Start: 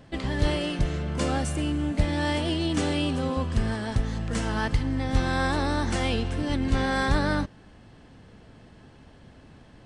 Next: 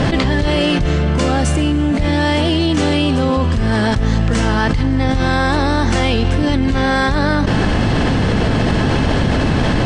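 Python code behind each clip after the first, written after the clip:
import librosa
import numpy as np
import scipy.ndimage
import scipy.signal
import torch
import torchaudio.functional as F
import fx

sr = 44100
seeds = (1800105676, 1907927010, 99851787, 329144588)

y = scipy.signal.sosfilt(scipy.signal.butter(2, 7300.0, 'lowpass', fs=sr, output='sos'), x)
y = fx.env_flatten(y, sr, amount_pct=100)
y = F.gain(torch.from_numpy(y), 2.5).numpy()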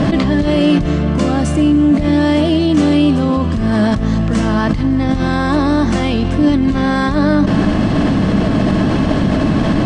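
y = fx.small_body(x, sr, hz=(200.0, 290.0, 620.0, 1100.0), ring_ms=45, db=10)
y = F.gain(torch.from_numpy(y), -4.0).numpy()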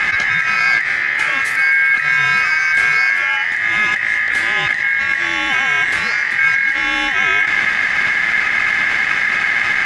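y = x * np.sin(2.0 * np.pi * 1900.0 * np.arange(len(x)) / sr)
y = fx.echo_thinned(y, sr, ms=132, feedback_pct=85, hz=420.0, wet_db=-17.5)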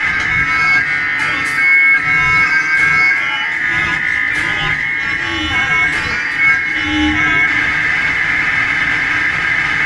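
y = fx.octave_divider(x, sr, octaves=2, level_db=3.0)
y = fx.rev_fdn(y, sr, rt60_s=0.35, lf_ratio=1.5, hf_ratio=0.7, size_ms=20.0, drr_db=-4.5)
y = F.gain(torch.from_numpy(y), -4.0).numpy()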